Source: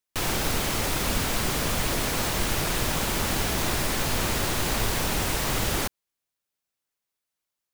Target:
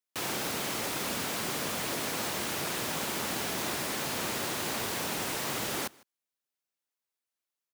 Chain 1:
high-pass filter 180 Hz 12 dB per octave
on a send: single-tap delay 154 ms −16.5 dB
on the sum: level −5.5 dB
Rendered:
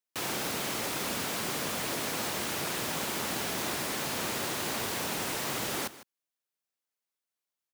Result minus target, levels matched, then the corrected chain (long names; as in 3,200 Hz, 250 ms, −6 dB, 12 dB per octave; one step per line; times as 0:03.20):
echo-to-direct +8.5 dB
high-pass filter 180 Hz 12 dB per octave
on a send: single-tap delay 154 ms −25 dB
on the sum: level −5.5 dB